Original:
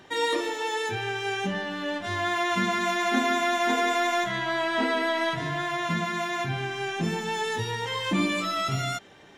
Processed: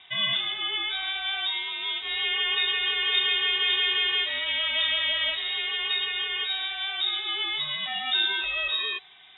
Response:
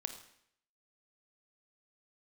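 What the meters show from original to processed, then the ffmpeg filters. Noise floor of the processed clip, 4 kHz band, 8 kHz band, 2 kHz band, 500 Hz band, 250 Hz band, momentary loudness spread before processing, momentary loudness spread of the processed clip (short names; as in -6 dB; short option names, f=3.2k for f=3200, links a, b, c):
-47 dBFS, +11.0 dB, under -40 dB, +0.5 dB, -15.0 dB, under -20 dB, 6 LU, 6 LU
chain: -af "lowpass=f=3.3k:t=q:w=0.5098,lowpass=f=3.3k:t=q:w=0.6013,lowpass=f=3.3k:t=q:w=0.9,lowpass=f=3.3k:t=q:w=2.563,afreqshift=-3900"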